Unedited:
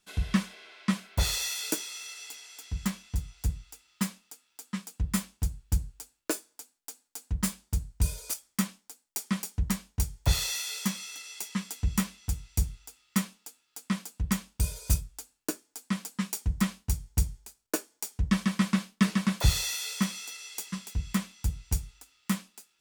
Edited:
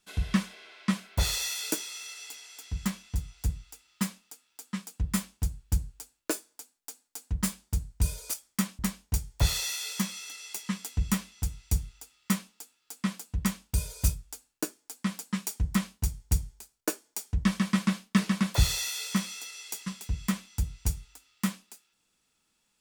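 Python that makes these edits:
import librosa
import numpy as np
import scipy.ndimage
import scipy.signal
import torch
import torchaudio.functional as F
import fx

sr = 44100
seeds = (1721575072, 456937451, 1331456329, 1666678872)

y = fx.edit(x, sr, fx.cut(start_s=8.79, length_s=0.86), tone=tone)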